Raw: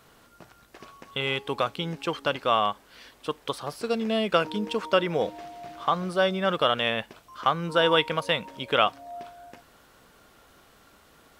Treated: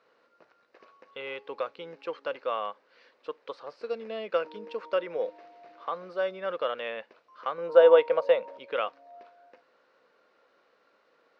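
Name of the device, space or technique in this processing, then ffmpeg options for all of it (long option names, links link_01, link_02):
phone earpiece: -filter_complex "[0:a]highpass=380,equalizer=frequency=510:width_type=q:width=4:gain=9,equalizer=frequency=750:width_type=q:width=4:gain=-4,equalizer=frequency=3300:width_type=q:width=4:gain=-9,lowpass=frequency=4400:width=0.5412,lowpass=frequency=4400:width=1.3066,asettb=1/sr,asplit=3[link_01][link_02][link_03];[link_01]atrim=end=7.584[link_04];[link_02]atrim=start=7.58:end=8.58,asetpts=PTS-STARTPTS,afade=type=in:duration=0.004:curve=qsin,afade=type=out:start_time=0.996:duration=0.004:curve=qsin,equalizer=frequency=630:width_type=o:width=1.3:gain=12[link_05];[link_03]atrim=start=8.576[link_06];[link_04][link_05]acrossfade=duration=0.004:curve1=hsin:curve2=qsin[link_07];[link_07][link_06]acrossfade=duration=0.004:curve1=qsin:curve2=hsin,volume=-8.5dB"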